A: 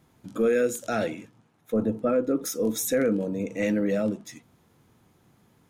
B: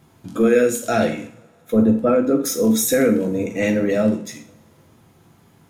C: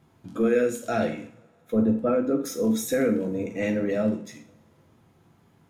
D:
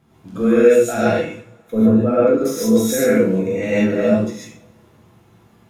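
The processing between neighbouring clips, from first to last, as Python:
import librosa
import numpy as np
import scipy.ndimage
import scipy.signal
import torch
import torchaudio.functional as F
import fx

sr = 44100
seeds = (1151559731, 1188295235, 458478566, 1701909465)

y1 = fx.rev_double_slope(x, sr, seeds[0], early_s=0.43, late_s=2.4, knee_db=-28, drr_db=3.0)
y1 = y1 * librosa.db_to_amplitude(6.5)
y2 = fx.high_shelf(y1, sr, hz=4700.0, db=-7.5)
y2 = y2 * librosa.db_to_amplitude(-6.5)
y3 = fx.rev_gated(y2, sr, seeds[1], gate_ms=170, shape='rising', drr_db=-7.5)
y3 = y3 * librosa.db_to_amplitude(1.0)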